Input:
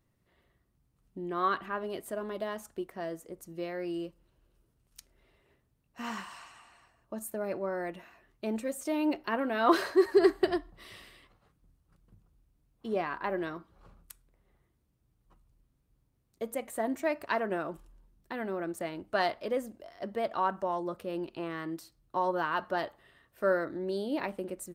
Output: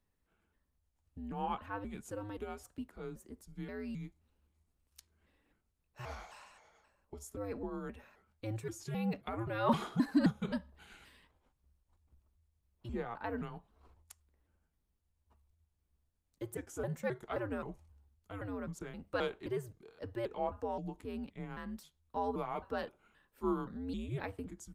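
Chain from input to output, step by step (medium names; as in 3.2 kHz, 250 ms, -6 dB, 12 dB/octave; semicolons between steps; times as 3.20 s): pitch shift switched off and on -3.5 st, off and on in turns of 263 ms; frequency shift -110 Hz; trim -6 dB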